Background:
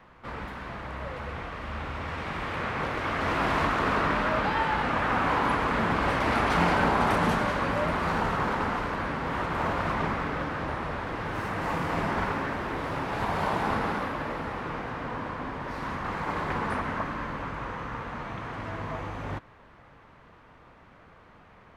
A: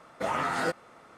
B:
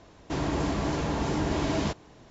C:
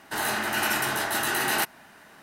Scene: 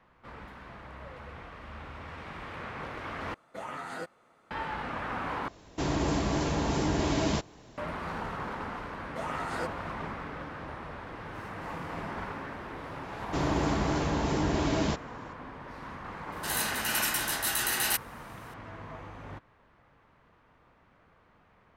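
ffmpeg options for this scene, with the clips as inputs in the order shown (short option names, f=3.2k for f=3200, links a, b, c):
-filter_complex "[1:a]asplit=2[a][b];[2:a]asplit=2[c][d];[0:a]volume=-9dB[e];[a]bandreject=f=5.3k:w=8.2[f];[c]highshelf=f=5.3k:g=5[g];[3:a]highshelf=f=2.1k:g=12[h];[e]asplit=3[i][j][k];[i]atrim=end=3.344[l];[f]atrim=end=1.17,asetpts=PTS-STARTPTS,volume=-10dB[m];[j]atrim=start=4.506:end=5.484[n];[g]atrim=end=2.3,asetpts=PTS-STARTPTS,volume=-0.5dB[o];[k]atrim=start=7.776[p];[b]atrim=end=1.17,asetpts=PTS-STARTPTS,volume=-7dB,afade=t=in:d=0.004:c=hsin,afade=t=out:st=1.166:d=0.004:c=hsin,adelay=8950[q];[d]atrim=end=2.3,asetpts=PTS-STARTPTS,volume=-0.5dB,afade=t=in:d=0.004:c=hsin,afade=t=out:st=2.296:d=0.004:c=hsin,adelay=13030[r];[h]atrim=end=2.22,asetpts=PTS-STARTPTS,volume=-10.5dB,afade=t=in:d=0.004:c=hsin,afade=t=out:st=2.216:d=0.004:c=hsin,adelay=16320[s];[l][m]acrossfade=d=0.004:c1=hsin:c2=hsin[t];[t][n]acrossfade=d=0.004:c1=hsin:c2=hsin[u];[u][o]acrossfade=d=0.004:c1=hsin:c2=hsin[v];[v][p]acrossfade=d=0.004:c1=hsin:c2=hsin[w];[w][q][r][s]amix=inputs=4:normalize=0"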